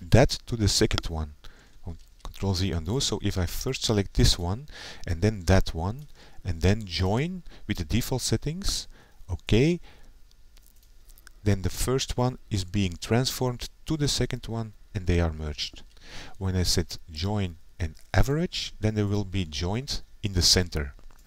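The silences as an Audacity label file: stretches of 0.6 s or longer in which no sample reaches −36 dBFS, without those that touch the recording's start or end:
9.810000	10.570000	silence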